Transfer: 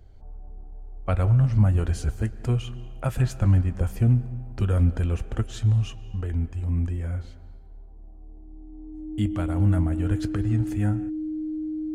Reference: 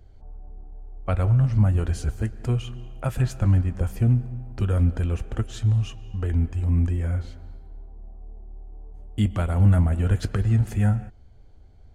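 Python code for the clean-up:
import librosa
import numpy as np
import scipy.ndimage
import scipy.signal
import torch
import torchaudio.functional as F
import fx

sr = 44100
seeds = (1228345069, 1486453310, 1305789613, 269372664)

y = fx.notch(x, sr, hz=310.0, q=30.0)
y = fx.fix_level(y, sr, at_s=6.21, step_db=4.0)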